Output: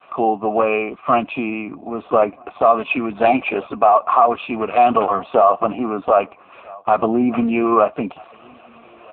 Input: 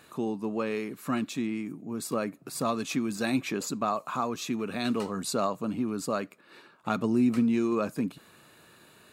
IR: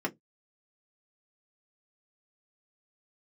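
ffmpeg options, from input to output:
-filter_complex "[0:a]agate=range=-33dB:threshold=-54dB:ratio=3:detection=peak,asplit=3[link_01][link_02][link_03];[link_01]bandpass=frequency=730:width_type=q:width=8,volume=0dB[link_04];[link_02]bandpass=frequency=1090:width_type=q:width=8,volume=-6dB[link_05];[link_03]bandpass=frequency=2440:width_type=q:width=8,volume=-9dB[link_06];[link_04][link_05][link_06]amix=inputs=3:normalize=0,asplit=3[link_07][link_08][link_09];[link_07]afade=type=out:start_time=2.72:duration=0.02[link_10];[link_08]bandreject=frequency=1200:width=19,afade=type=in:start_time=2.72:duration=0.02,afade=type=out:start_time=3.89:duration=0.02[link_11];[link_09]afade=type=in:start_time=3.89:duration=0.02[link_12];[link_10][link_11][link_12]amix=inputs=3:normalize=0,asettb=1/sr,asplit=3[link_13][link_14][link_15];[link_13]atrim=end=4.464[link_16];[link_14]atrim=start=4.46:end=5.86,asetpts=PTS-STARTPTS,afade=type=in:duration=0.004:curve=qsin,afade=type=out:start_time=1.396:duration=0.004:curve=qsin,adynamicequalizer=threshold=0.00398:dfrequency=1000:dqfactor=1.2:tfrequency=1000:tqfactor=1.2:attack=5:release=100:ratio=0.375:range=1.5:mode=boostabove:tftype=bell[link_17];[link_15]atrim=start=5.856[link_18];[link_16][link_17]acrossfade=duration=0.004:curve1=hsin:curve2=qsin[link_19];[link_19][link_18]acrossfade=duration=0.004:curve1=qsin:curve2=hsin,asplit=2[link_20][link_21];[link_21]adelay=1283,volume=-29dB,highshelf=frequency=4000:gain=-28.9[link_22];[link_20][link_22]amix=inputs=2:normalize=0,alimiter=level_in=30.5dB:limit=-1dB:release=50:level=0:latency=1,volume=-1dB" -ar 8000 -c:a libopencore_amrnb -b:a 5150

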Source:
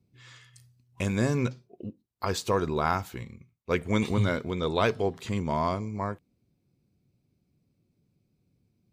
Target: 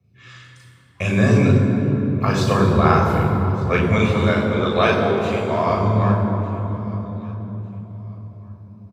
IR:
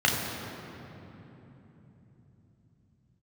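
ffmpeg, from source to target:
-filter_complex "[0:a]asettb=1/sr,asplit=3[link_01][link_02][link_03];[link_01]atrim=end=3.944[link_04];[link_02]atrim=start=3.94:end=5.72,asetpts=PTS-STARTPTS,afade=type=in:duration=0.004:curve=qsin,afade=type=out:start_time=1.776:duration=0.004:curve=qsin,highpass=350[link_05];[link_03]atrim=start=5.716[link_06];[link_04][link_05]acrossfade=duration=0.004:curve1=hsin:curve2=qsin[link_07];[link_07][link_06]acrossfade=duration=0.004:curve1=qsin:curve2=hsin,aecho=1:1:1200|2400:0.0794|0.0199[link_08];[1:a]atrim=start_sample=2205,asetrate=37044,aresample=44100[link_09];[link_08][link_09]afir=irnorm=-1:irlink=0,volume=-6.5dB"

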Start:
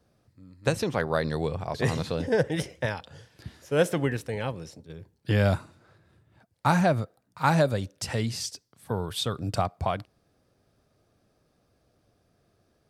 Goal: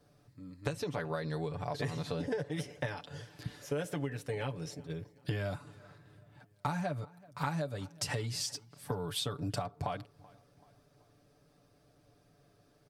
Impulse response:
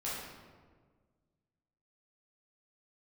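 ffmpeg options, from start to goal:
-filter_complex "[0:a]aecho=1:1:6.9:0.71,acompressor=threshold=-32dB:ratio=12,asplit=2[link_01][link_02];[link_02]adelay=382,lowpass=frequency=2800:poles=1,volume=-22.5dB,asplit=2[link_03][link_04];[link_04]adelay=382,lowpass=frequency=2800:poles=1,volume=0.48,asplit=2[link_05][link_06];[link_06]adelay=382,lowpass=frequency=2800:poles=1,volume=0.48[link_07];[link_03][link_05][link_07]amix=inputs=3:normalize=0[link_08];[link_01][link_08]amix=inputs=2:normalize=0"

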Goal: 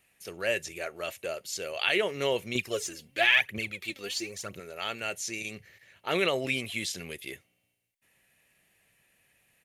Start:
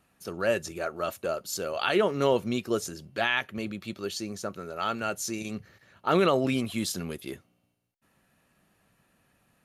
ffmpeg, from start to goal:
ffmpeg -i in.wav -filter_complex "[0:a]acrossover=split=6900[link_01][link_02];[link_02]acompressor=threshold=-51dB:ratio=4:attack=1:release=60[link_03];[link_01][link_03]amix=inputs=2:normalize=0,firequalizer=gain_entry='entry(120,0);entry(220,-5);entry(440,3);entry(1300,-3);entry(2000,14);entry(4300,6);entry(8100,11)':delay=0.05:min_phase=1,asettb=1/sr,asplit=3[link_04][link_05][link_06];[link_04]atrim=end=2.554[link_07];[link_05]atrim=start=2.55:end=4.6,asetpts=PTS-STARTPTS,afade=type=in:duration=0.004:curve=qsin,afade=type=out:start_time=2.046:duration=0.004:curve=qsin,aphaser=in_gain=1:out_gain=1:delay=4.4:decay=0.65:speed=1:type=triangular[link_08];[link_06]atrim=start=4.596[link_09];[link_07][link_08]acrossfade=duration=0.004:curve1=hsin:curve2=qsin[link_10];[link_10][link_09]acrossfade=duration=0.004:curve1=qsin:curve2=hsin,volume=-6.5dB" out.wav

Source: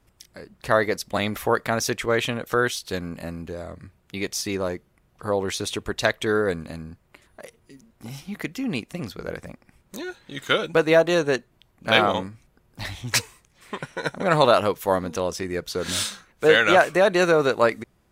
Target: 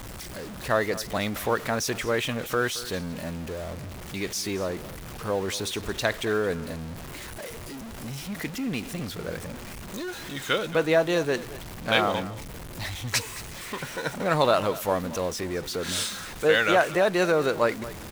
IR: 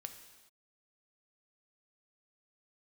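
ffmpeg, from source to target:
-af "aeval=exprs='val(0)+0.5*0.0376*sgn(val(0))':channel_layout=same,aecho=1:1:222:0.15,volume=-5dB"

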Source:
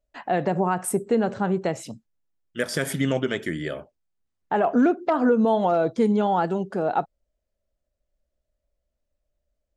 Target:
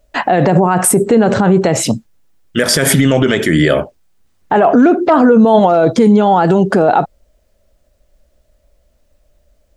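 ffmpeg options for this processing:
ffmpeg -i in.wav -af "alimiter=level_in=23.5dB:limit=-1dB:release=50:level=0:latency=1,volume=-1dB" out.wav

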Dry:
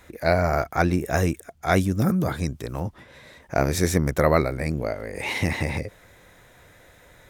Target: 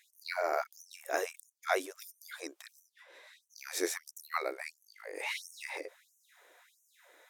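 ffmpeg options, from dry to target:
ffmpeg -i in.wav -af "afftfilt=real='re*gte(b*sr/1024,280*pow(5800/280,0.5+0.5*sin(2*PI*1.5*pts/sr)))':imag='im*gte(b*sr/1024,280*pow(5800/280,0.5+0.5*sin(2*PI*1.5*pts/sr)))':win_size=1024:overlap=0.75,volume=-7.5dB" out.wav

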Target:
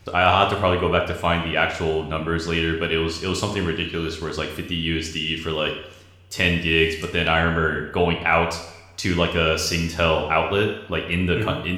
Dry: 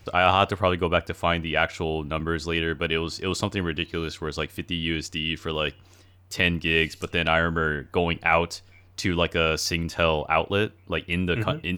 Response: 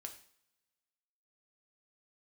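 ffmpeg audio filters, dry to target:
-filter_complex "[1:a]atrim=start_sample=2205,asetrate=29106,aresample=44100[link_01];[0:a][link_01]afir=irnorm=-1:irlink=0,volume=5dB"

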